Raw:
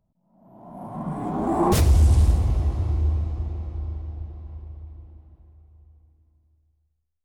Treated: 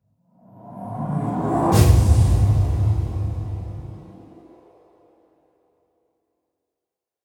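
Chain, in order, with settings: two-slope reverb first 0.51 s, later 4.1 s, from -22 dB, DRR -10 dB; high-pass sweep 100 Hz -> 450 Hz, 3.68–4.72 s; trim -7.5 dB

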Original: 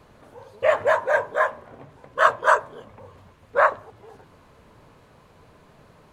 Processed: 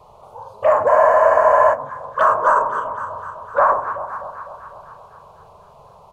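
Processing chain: overdrive pedal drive 9 dB, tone 3.5 kHz, clips at -2.5 dBFS; graphic EQ 500/1000/2000/4000/8000 Hz -3/+6/-11/-5/-4 dB; touch-sensitive phaser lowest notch 260 Hz, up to 3.6 kHz, full sweep at -17.5 dBFS; doubling 44 ms -6 dB; on a send: echo whose repeats swap between lows and highs 126 ms, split 970 Hz, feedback 78%, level -13 dB; on the sum: loudness maximiser +11.5 dB; spectral freeze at 0.90 s, 0.84 s; trim -4.5 dB

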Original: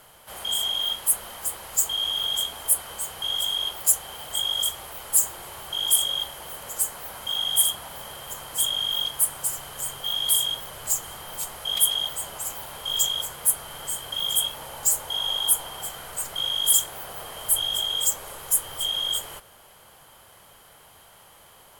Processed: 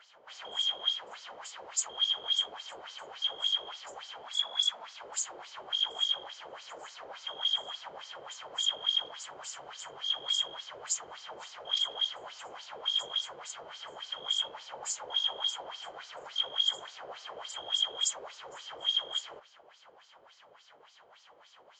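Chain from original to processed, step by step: LFO band-pass sine 3.5 Hz 410–5400 Hz; 4.23–5.01 s: frequency shift +110 Hz; resampled via 16 kHz; trim +2.5 dB

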